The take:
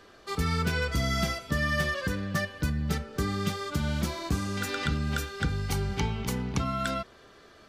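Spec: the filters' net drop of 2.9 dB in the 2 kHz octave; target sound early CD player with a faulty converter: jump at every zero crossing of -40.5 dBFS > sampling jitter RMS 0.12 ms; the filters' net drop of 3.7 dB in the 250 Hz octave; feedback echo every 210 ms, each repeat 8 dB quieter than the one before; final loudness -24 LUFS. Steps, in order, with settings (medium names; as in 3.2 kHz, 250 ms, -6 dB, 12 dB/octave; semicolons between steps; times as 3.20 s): peaking EQ 250 Hz -5.5 dB; peaking EQ 2 kHz -3.5 dB; feedback delay 210 ms, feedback 40%, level -8 dB; jump at every zero crossing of -40.5 dBFS; sampling jitter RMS 0.12 ms; trim +6 dB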